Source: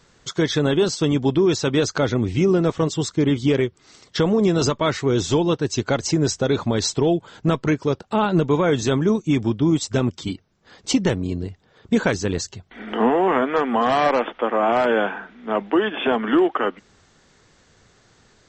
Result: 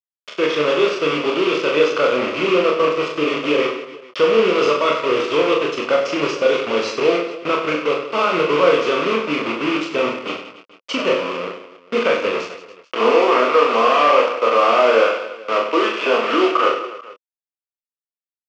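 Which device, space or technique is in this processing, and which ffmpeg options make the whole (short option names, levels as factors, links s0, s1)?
hand-held game console: -filter_complex "[0:a]acrusher=bits=3:mix=0:aa=0.000001,highpass=450,equalizer=f=510:t=q:w=4:g=8,equalizer=f=800:t=q:w=4:g=-10,equalizer=f=1200:t=q:w=4:g=8,equalizer=f=1700:t=q:w=4:g=-8,equalizer=f=2600:t=q:w=4:g=7,equalizer=f=3900:t=q:w=4:g=-9,lowpass=f=4200:w=0.5412,lowpass=f=4200:w=1.3066,asplit=2[s0][s1];[s1]adelay=27,volume=0.531[s2];[s0][s2]amix=inputs=2:normalize=0,aecho=1:1:40|96|174.4|284.2|437.8:0.631|0.398|0.251|0.158|0.1,volume=1.12"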